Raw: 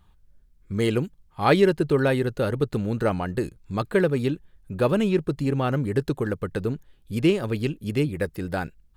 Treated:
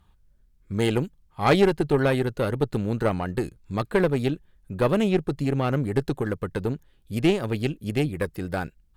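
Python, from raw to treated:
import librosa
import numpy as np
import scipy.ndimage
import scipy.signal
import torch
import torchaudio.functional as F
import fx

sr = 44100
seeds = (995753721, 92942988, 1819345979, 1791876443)

y = fx.cheby_harmonics(x, sr, harmonics=(4,), levels_db=(-17,), full_scale_db=-6.5)
y = y * librosa.db_to_amplitude(-1.0)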